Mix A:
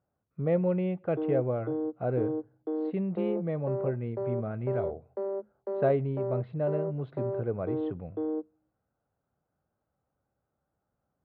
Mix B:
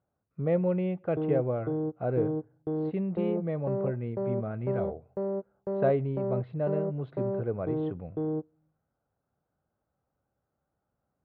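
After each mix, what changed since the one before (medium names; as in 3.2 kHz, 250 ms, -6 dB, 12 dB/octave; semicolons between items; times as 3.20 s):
background: remove Chebyshev high-pass 210 Hz, order 10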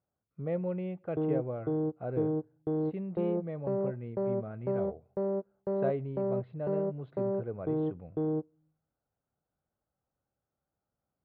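speech -6.5 dB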